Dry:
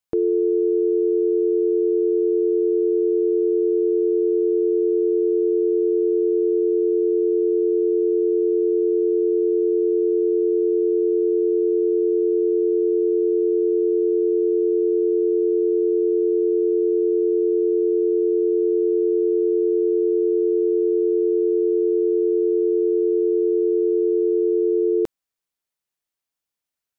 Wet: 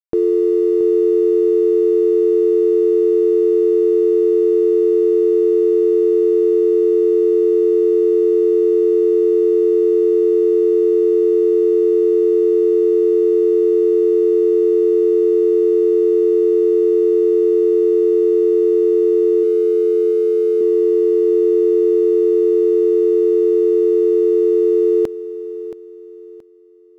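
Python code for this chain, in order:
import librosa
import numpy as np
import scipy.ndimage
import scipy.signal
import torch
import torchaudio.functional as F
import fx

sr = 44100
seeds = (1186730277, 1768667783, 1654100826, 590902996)

p1 = fx.notch(x, sr, hz=360.0, q=12.0, at=(19.43, 20.61))
p2 = np.sign(p1) * np.maximum(np.abs(p1) - 10.0 ** (-49.5 / 20.0), 0.0)
p3 = p2 + fx.echo_feedback(p2, sr, ms=675, feedback_pct=33, wet_db=-14, dry=0)
y = p3 * librosa.db_to_amplitude(4.5)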